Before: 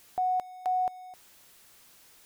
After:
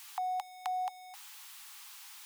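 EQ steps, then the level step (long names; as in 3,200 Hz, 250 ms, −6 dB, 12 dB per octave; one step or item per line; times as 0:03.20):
dynamic equaliser 1,400 Hz, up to −7 dB, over −47 dBFS, Q 1.2
Chebyshev high-pass with heavy ripple 790 Hz, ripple 3 dB
+9.0 dB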